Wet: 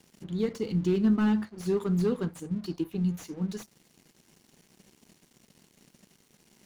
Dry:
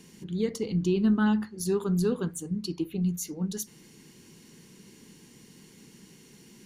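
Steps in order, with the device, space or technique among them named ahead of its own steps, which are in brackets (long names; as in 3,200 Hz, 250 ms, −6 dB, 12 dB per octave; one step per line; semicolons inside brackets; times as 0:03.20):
early transistor amplifier (dead-zone distortion −52.5 dBFS; slew-rate limiting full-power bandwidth 36 Hz)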